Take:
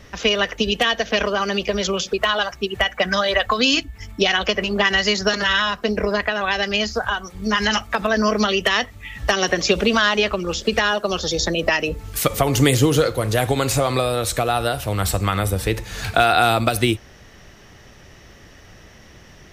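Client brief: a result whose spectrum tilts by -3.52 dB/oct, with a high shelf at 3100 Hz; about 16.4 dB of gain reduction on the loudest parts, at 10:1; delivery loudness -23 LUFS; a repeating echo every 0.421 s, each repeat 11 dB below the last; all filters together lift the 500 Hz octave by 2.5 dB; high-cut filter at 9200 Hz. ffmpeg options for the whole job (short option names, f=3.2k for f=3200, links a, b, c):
-af "lowpass=9.2k,equalizer=f=500:t=o:g=3,highshelf=f=3.1k:g=3.5,acompressor=threshold=-28dB:ratio=10,aecho=1:1:421|842|1263:0.282|0.0789|0.0221,volume=8.5dB"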